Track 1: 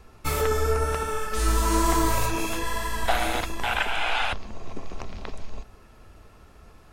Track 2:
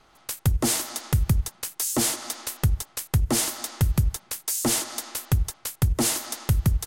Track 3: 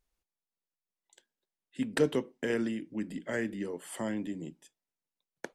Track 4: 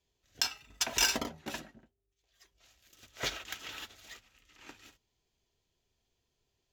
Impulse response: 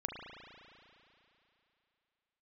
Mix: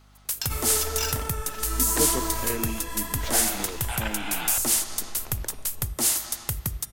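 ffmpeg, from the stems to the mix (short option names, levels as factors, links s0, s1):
-filter_complex "[0:a]adelay=250,volume=0.335,asplit=2[s0][s1];[s1]volume=0.251[s2];[1:a]lowshelf=f=460:g=-8.5,volume=0.631,asplit=2[s3][s4];[s4]volume=0.178[s5];[2:a]volume=0.841[s6];[3:a]volume=0.562[s7];[4:a]atrim=start_sample=2205[s8];[s2][s5]amix=inputs=2:normalize=0[s9];[s9][s8]afir=irnorm=-1:irlink=0[s10];[s0][s3][s6][s7][s10]amix=inputs=5:normalize=0,highshelf=f=8000:g=10.5,bandreject=f=404.1:t=h:w=4,bandreject=f=808.2:t=h:w=4,bandreject=f=1212.3:t=h:w=4,bandreject=f=1616.4:t=h:w=4,bandreject=f=2020.5:t=h:w=4,bandreject=f=2424.6:t=h:w=4,bandreject=f=2828.7:t=h:w=4,bandreject=f=3232.8:t=h:w=4,bandreject=f=3636.9:t=h:w=4,bandreject=f=4041:t=h:w=4,bandreject=f=4445.1:t=h:w=4,bandreject=f=4849.2:t=h:w=4,bandreject=f=5253.3:t=h:w=4,bandreject=f=5657.4:t=h:w=4,bandreject=f=6061.5:t=h:w=4,bandreject=f=6465.6:t=h:w=4,bandreject=f=6869.7:t=h:w=4,bandreject=f=7273.8:t=h:w=4,bandreject=f=7677.9:t=h:w=4,bandreject=f=8082:t=h:w=4,bandreject=f=8486.1:t=h:w=4,bandreject=f=8890.2:t=h:w=4,bandreject=f=9294.3:t=h:w=4,bandreject=f=9698.4:t=h:w=4,bandreject=f=10102.5:t=h:w=4,bandreject=f=10506.6:t=h:w=4,bandreject=f=10910.7:t=h:w=4,bandreject=f=11314.8:t=h:w=4,bandreject=f=11718.9:t=h:w=4,bandreject=f=12123:t=h:w=4,bandreject=f=12527.1:t=h:w=4,bandreject=f=12931.2:t=h:w=4,bandreject=f=13335.3:t=h:w=4,bandreject=f=13739.4:t=h:w=4,aeval=exprs='val(0)+0.002*(sin(2*PI*50*n/s)+sin(2*PI*2*50*n/s)/2+sin(2*PI*3*50*n/s)/3+sin(2*PI*4*50*n/s)/4+sin(2*PI*5*50*n/s)/5)':c=same"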